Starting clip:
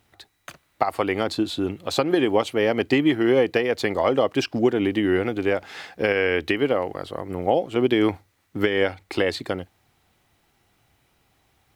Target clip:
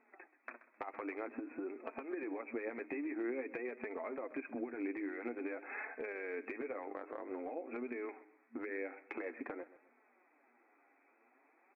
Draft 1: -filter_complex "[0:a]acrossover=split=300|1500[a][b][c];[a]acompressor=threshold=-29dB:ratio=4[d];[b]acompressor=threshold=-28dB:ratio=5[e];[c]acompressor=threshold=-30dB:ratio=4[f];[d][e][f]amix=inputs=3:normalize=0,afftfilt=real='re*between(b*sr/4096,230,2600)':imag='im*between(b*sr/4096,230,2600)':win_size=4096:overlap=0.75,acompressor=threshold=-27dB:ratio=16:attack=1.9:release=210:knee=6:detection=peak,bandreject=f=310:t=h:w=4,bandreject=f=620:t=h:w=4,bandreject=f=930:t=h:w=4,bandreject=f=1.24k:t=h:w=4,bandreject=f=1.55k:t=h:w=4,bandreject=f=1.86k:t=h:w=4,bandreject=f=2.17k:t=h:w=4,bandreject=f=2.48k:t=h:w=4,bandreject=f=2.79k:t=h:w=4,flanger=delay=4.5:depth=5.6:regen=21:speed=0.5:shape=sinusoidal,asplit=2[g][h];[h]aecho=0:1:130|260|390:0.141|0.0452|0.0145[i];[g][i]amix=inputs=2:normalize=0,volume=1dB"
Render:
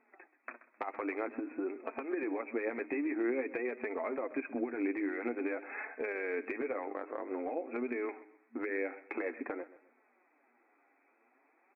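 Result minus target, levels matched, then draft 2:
compressor: peak gain reduction -6 dB
-filter_complex "[0:a]acrossover=split=300|1500[a][b][c];[a]acompressor=threshold=-29dB:ratio=4[d];[b]acompressor=threshold=-28dB:ratio=5[e];[c]acompressor=threshold=-30dB:ratio=4[f];[d][e][f]amix=inputs=3:normalize=0,afftfilt=real='re*between(b*sr/4096,230,2600)':imag='im*between(b*sr/4096,230,2600)':win_size=4096:overlap=0.75,acompressor=threshold=-33.5dB:ratio=16:attack=1.9:release=210:knee=6:detection=peak,bandreject=f=310:t=h:w=4,bandreject=f=620:t=h:w=4,bandreject=f=930:t=h:w=4,bandreject=f=1.24k:t=h:w=4,bandreject=f=1.55k:t=h:w=4,bandreject=f=1.86k:t=h:w=4,bandreject=f=2.17k:t=h:w=4,bandreject=f=2.48k:t=h:w=4,bandreject=f=2.79k:t=h:w=4,flanger=delay=4.5:depth=5.6:regen=21:speed=0.5:shape=sinusoidal,asplit=2[g][h];[h]aecho=0:1:130|260|390:0.141|0.0452|0.0145[i];[g][i]amix=inputs=2:normalize=0,volume=1dB"

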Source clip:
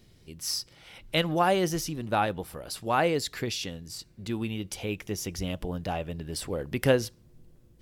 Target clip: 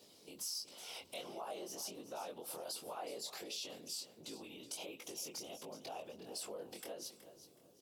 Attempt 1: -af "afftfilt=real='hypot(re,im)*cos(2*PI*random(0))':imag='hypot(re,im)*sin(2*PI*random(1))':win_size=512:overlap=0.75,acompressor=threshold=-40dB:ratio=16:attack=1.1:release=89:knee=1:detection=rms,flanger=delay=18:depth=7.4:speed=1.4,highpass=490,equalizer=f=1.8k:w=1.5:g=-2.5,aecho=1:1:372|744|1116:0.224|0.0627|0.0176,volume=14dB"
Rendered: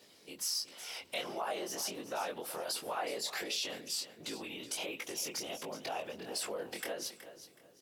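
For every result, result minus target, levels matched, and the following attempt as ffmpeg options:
compressor: peak gain reduction -6 dB; 2000 Hz band +5.5 dB
-af "afftfilt=real='hypot(re,im)*cos(2*PI*random(0))':imag='hypot(re,im)*sin(2*PI*random(1))':win_size=512:overlap=0.75,acompressor=threshold=-46.5dB:ratio=16:attack=1.1:release=89:knee=1:detection=rms,flanger=delay=18:depth=7.4:speed=1.4,highpass=490,equalizer=f=1.8k:w=1.5:g=-2.5,aecho=1:1:372|744|1116:0.224|0.0627|0.0176,volume=14dB"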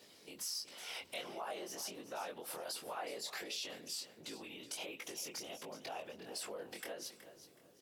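2000 Hz band +6.0 dB
-af "afftfilt=real='hypot(re,im)*cos(2*PI*random(0))':imag='hypot(re,im)*sin(2*PI*random(1))':win_size=512:overlap=0.75,acompressor=threshold=-46.5dB:ratio=16:attack=1.1:release=89:knee=1:detection=rms,flanger=delay=18:depth=7.4:speed=1.4,highpass=490,equalizer=f=1.8k:w=1.5:g=-14,aecho=1:1:372|744|1116:0.224|0.0627|0.0176,volume=14dB"

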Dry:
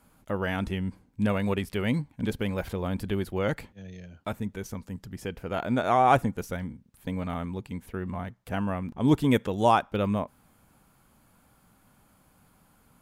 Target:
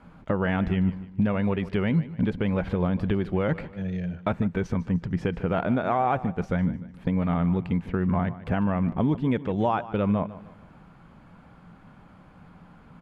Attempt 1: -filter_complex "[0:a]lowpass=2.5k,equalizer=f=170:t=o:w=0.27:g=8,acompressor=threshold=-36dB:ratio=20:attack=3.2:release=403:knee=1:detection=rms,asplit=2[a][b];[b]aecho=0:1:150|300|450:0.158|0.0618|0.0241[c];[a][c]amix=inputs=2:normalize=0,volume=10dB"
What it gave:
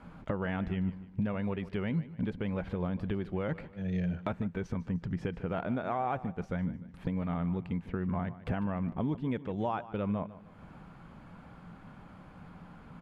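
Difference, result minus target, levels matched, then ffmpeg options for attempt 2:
compressor: peak gain reduction +8.5 dB
-filter_complex "[0:a]lowpass=2.5k,equalizer=f=170:t=o:w=0.27:g=8,acompressor=threshold=-27dB:ratio=20:attack=3.2:release=403:knee=1:detection=rms,asplit=2[a][b];[b]aecho=0:1:150|300|450:0.158|0.0618|0.0241[c];[a][c]amix=inputs=2:normalize=0,volume=10dB"

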